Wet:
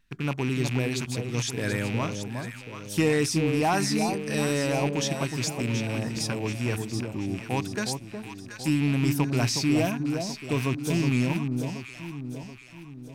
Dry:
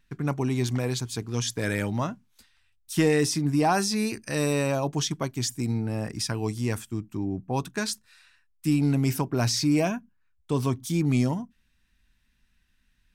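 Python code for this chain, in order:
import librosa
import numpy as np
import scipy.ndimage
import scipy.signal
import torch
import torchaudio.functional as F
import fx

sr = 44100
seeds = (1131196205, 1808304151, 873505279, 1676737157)

y = fx.rattle_buzz(x, sr, strikes_db=-30.0, level_db=-23.0)
y = fx.echo_alternate(y, sr, ms=365, hz=980.0, feedback_pct=67, wet_db=-5)
y = F.gain(torch.from_numpy(y), -1.5).numpy()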